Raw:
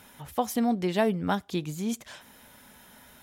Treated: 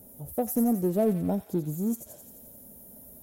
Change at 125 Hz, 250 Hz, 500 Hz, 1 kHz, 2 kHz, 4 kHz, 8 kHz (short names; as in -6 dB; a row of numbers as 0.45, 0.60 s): +2.5 dB, +1.5 dB, +1.0 dB, -7.0 dB, under -15 dB, under -15 dB, 0.0 dB